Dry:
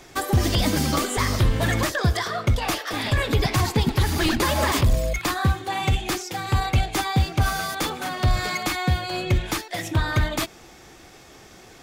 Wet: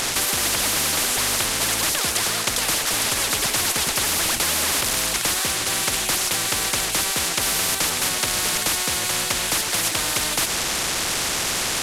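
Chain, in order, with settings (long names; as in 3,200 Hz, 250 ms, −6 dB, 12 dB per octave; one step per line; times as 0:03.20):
linear delta modulator 64 kbit/s, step −34.5 dBFS
every bin compressed towards the loudest bin 10 to 1
level +3 dB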